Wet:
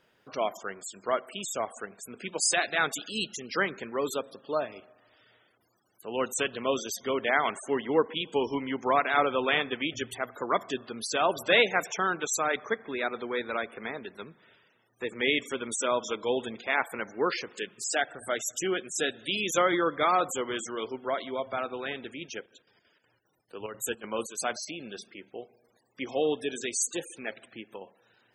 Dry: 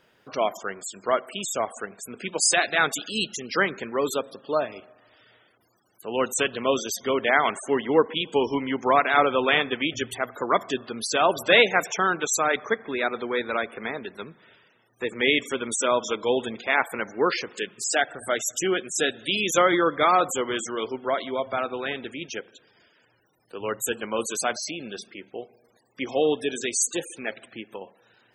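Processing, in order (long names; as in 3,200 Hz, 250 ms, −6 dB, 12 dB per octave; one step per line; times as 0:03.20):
0:22.34–0:24.67: square-wave tremolo 6.8 Hz → 2.4 Hz, depth 60%, duty 70%
level −5 dB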